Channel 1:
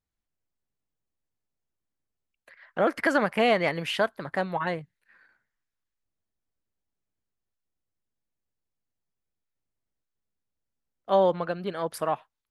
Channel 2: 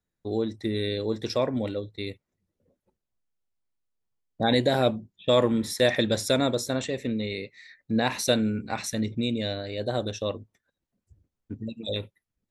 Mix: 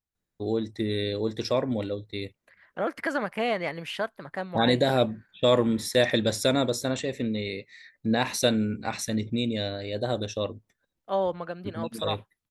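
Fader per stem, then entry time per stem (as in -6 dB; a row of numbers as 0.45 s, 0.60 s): -5.0 dB, 0.0 dB; 0.00 s, 0.15 s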